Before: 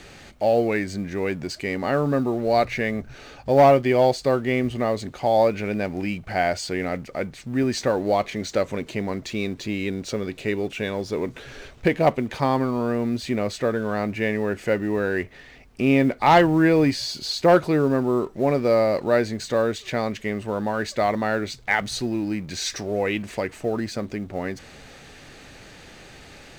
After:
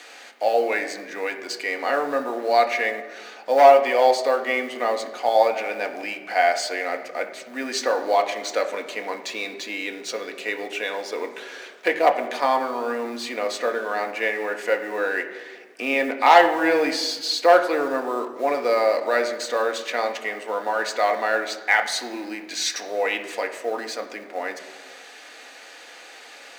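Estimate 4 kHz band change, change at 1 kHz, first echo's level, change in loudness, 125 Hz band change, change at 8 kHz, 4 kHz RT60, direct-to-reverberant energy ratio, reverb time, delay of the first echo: +3.5 dB, +3.5 dB, no echo, +0.5 dB, under -25 dB, +3.0 dB, 1.0 s, 4.0 dB, 1.4 s, no echo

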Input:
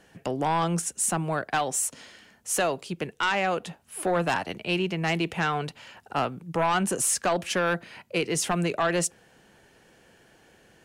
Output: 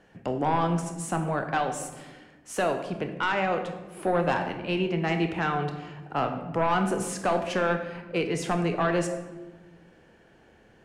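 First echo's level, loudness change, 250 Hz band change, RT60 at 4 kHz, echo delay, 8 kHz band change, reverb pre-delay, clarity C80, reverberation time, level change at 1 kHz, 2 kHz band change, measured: no echo, -1.0 dB, +1.5 dB, 0.70 s, no echo, -11.5 dB, 23 ms, 10.0 dB, 1.2 s, 0.0 dB, -2.0 dB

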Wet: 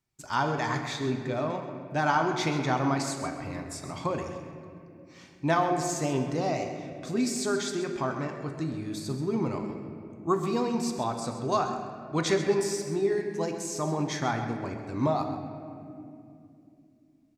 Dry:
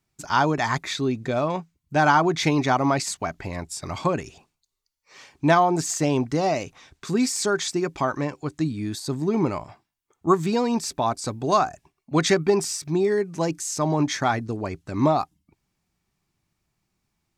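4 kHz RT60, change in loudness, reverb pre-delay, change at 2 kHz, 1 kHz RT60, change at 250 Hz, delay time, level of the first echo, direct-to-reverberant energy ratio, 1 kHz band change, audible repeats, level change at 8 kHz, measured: 1.5 s, -6.0 dB, 7 ms, -6.0 dB, 2.2 s, -5.5 dB, 131 ms, -11.5 dB, 3.5 dB, -6.5 dB, 1, -6.5 dB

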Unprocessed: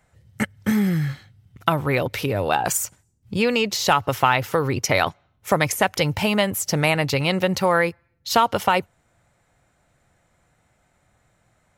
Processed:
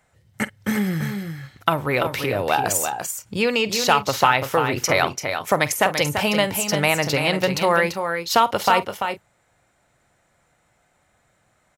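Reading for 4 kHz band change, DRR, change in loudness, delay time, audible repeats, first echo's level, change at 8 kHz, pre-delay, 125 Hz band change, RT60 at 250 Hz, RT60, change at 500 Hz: +2.0 dB, no reverb, +0.5 dB, 48 ms, 3, -17.0 dB, +2.0 dB, no reverb, -3.0 dB, no reverb, no reverb, +1.0 dB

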